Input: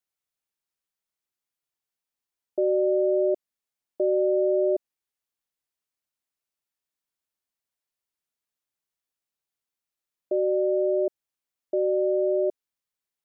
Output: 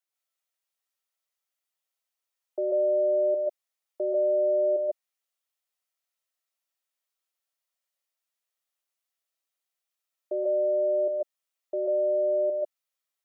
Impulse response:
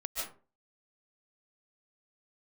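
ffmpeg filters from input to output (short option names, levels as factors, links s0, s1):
-filter_complex "[0:a]highpass=500[s0];[1:a]atrim=start_sample=2205,atrim=end_sample=6615[s1];[s0][s1]afir=irnorm=-1:irlink=0,volume=1.19"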